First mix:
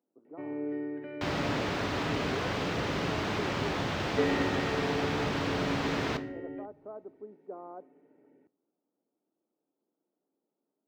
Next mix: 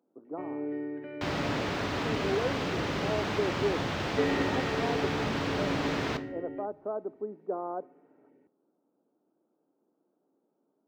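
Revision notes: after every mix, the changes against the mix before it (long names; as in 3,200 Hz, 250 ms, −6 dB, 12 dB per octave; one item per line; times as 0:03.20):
speech +9.5 dB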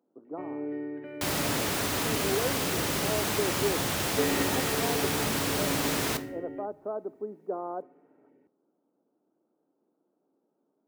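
second sound: remove high-frequency loss of the air 200 metres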